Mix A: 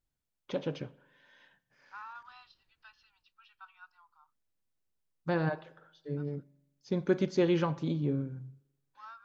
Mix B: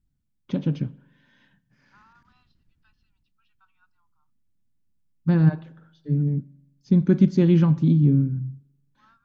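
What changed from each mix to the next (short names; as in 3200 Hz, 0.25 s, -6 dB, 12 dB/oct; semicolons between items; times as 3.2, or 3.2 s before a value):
second voice -10.5 dB; master: add resonant low shelf 330 Hz +13.5 dB, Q 1.5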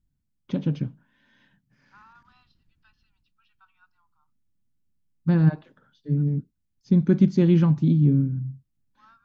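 second voice +4.0 dB; reverb: off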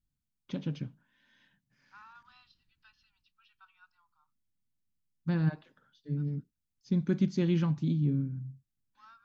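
first voice -5.5 dB; master: add tilt shelf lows -4.5 dB, about 1400 Hz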